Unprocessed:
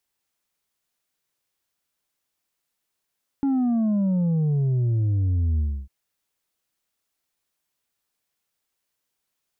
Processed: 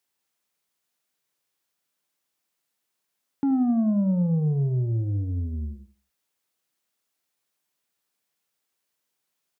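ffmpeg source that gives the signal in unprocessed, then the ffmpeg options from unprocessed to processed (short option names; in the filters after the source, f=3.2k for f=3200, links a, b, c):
-f lavfi -i "aevalsrc='0.106*clip((2.45-t)/0.29,0,1)*tanh(1.58*sin(2*PI*280*2.45/log(65/280)*(exp(log(65/280)*t/2.45)-1)))/tanh(1.58)':d=2.45:s=44100"
-filter_complex "[0:a]highpass=120,asplit=2[a][b];[b]adelay=78,lowpass=f=2k:p=1,volume=-13dB,asplit=2[c][d];[d]adelay=78,lowpass=f=2k:p=1,volume=0.27,asplit=2[e][f];[f]adelay=78,lowpass=f=2k:p=1,volume=0.27[g];[a][c][e][g]amix=inputs=4:normalize=0"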